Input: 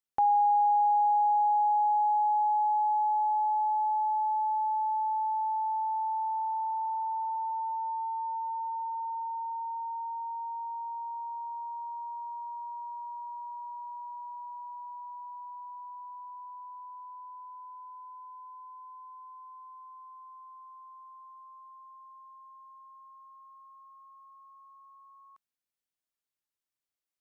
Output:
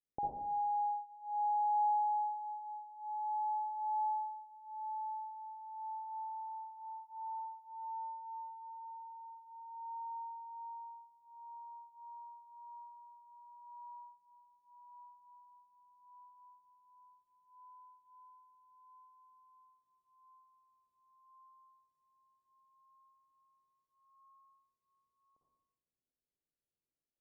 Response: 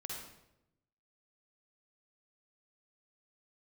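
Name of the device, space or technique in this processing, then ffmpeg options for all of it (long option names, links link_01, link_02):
next room: -filter_complex "[0:a]lowpass=frequency=570:width=0.5412,lowpass=frequency=570:width=1.3066[link_01];[1:a]atrim=start_sample=2205[link_02];[link_01][link_02]afir=irnorm=-1:irlink=0,volume=5dB"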